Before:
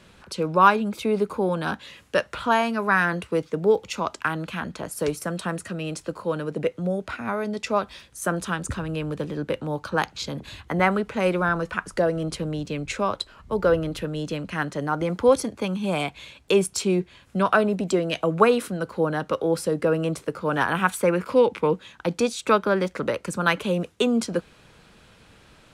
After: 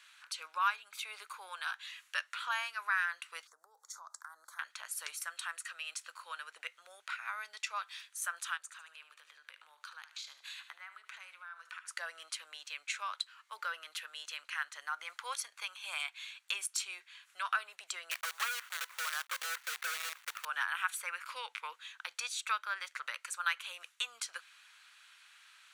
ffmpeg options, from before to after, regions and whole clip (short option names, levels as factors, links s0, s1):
-filter_complex "[0:a]asettb=1/sr,asplit=3[s0][s1][s2];[s0]atrim=end=3.474[s3];[s1]atrim=start=3.47:end=4.59,asetpts=PTS-STARTPTS,afade=t=in:d=0.004:c=qsin,afade=t=out:st=1.116:d=0.004:c=qsin,acompressor=threshold=0.0316:ratio=16:attack=3.2:release=140:knee=1:detection=peak,asuperstop=centerf=2700:order=4:qfactor=0.56[s4];[s2]atrim=start=4.586[s5];[s3][s4]acrossfade=d=0.004:c1=hsin:c2=qsin[s6];[s6][s5]acrossfade=d=0.004:c1=qsin:c2=hsin,asettb=1/sr,asplit=3[s7][s8][s9];[s7]atrim=end=8.574[s10];[s8]atrim=start=8.57:end=11.88,asetpts=PTS-STARTPTS,afade=t=in:d=0.004:c=qsin,afade=t=out:st=3.306:d=0.004:c=qsin,equalizer=f=190:w=2:g=-4,acompressor=threshold=0.0141:ratio=10:attack=3.2:release=140:knee=1:detection=peak,aecho=1:1:74|148|222|296:0.251|0.105|0.0443|0.0186,atrim=end_sample=145971[s11];[s9]atrim=start=11.876[s12];[s10][s11]acrossfade=d=0.004:c1=hsin:c2=qsin[s13];[s13][s12]acrossfade=d=0.004:c1=qsin:c2=hsin,asettb=1/sr,asplit=3[s14][s15][s16];[s14]atrim=end=18.114[s17];[s15]atrim=start=18.11:end=20.45,asetpts=PTS-STARTPTS,afade=t=in:d=0.004:c=qsin,afade=t=out:st=2.336:d=0.004:c=qsin,highpass=330,equalizer=f=350:t=q:w=4:g=5,equalizer=f=510:t=q:w=4:g=8,equalizer=f=1300:t=q:w=4:g=4,lowpass=f=2400:w=0.5412,lowpass=f=2400:w=1.3066,asoftclip=type=hard:threshold=0.15,acrusher=bits=5:dc=4:mix=0:aa=0.000001[s18];[s16]atrim=start=20.446[s19];[s17][s18]acrossfade=d=0.004:c1=hsin:c2=qsin[s20];[s20][s19]acrossfade=d=0.004:c1=qsin:c2=hsin,highpass=f=1300:w=0.5412,highpass=f=1300:w=1.3066,bandreject=f=5100:w=14,acompressor=threshold=0.0141:ratio=1.5,volume=0.75"